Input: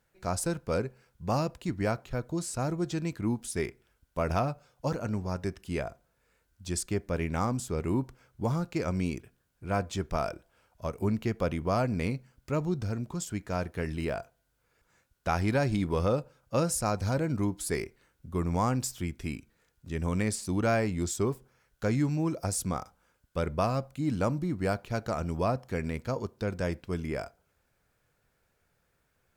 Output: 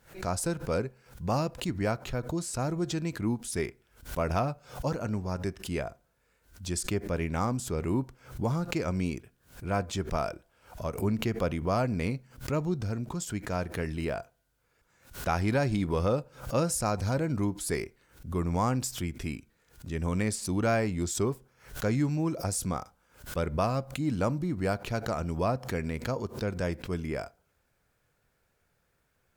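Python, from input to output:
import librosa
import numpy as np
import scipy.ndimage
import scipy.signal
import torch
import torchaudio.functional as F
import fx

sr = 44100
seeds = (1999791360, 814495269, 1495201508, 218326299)

y = fx.pre_swell(x, sr, db_per_s=140.0)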